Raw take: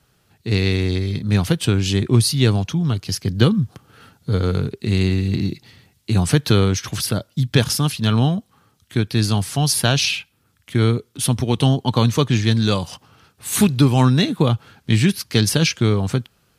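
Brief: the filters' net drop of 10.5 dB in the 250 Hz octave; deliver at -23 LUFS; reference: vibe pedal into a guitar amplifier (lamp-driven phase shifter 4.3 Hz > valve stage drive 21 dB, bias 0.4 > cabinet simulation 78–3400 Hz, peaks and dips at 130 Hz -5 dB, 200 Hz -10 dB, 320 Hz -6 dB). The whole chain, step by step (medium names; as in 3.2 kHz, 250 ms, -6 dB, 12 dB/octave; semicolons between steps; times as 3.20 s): peaking EQ 250 Hz -6.5 dB; lamp-driven phase shifter 4.3 Hz; valve stage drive 21 dB, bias 0.4; cabinet simulation 78–3400 Hz, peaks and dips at 130 Hz -5 dB, 200 Hz -10 dB, 320 Hz -6 dB; trim +10 dB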